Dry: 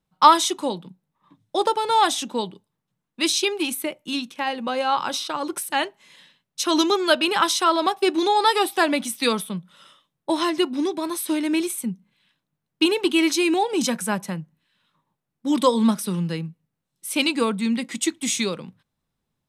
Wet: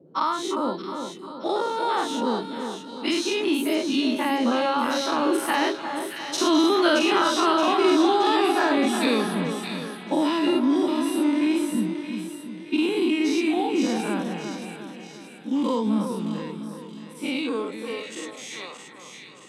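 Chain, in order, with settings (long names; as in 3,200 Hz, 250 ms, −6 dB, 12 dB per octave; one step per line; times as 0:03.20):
every bin's largest magnitude spread in time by 120 ms
source passing by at 0:06.64, 12 m/s, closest 15 metres
downward compressor 3 to 1, threshold −28 dBFS, peak gain reduction 14.5 dB
high-shelf EQ 5,900 Hz −12 dB
on a send: echo with a time of its own for lows and highs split 1,700 Hz, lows 355 ms, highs 623 ms, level −7 dB
on the sum: high-pass filter sweep 240 Hz → 790 Hz, 0:17.27–0:18.72
noise in a band 140–490 Hz −58 dBFS
level +5 dB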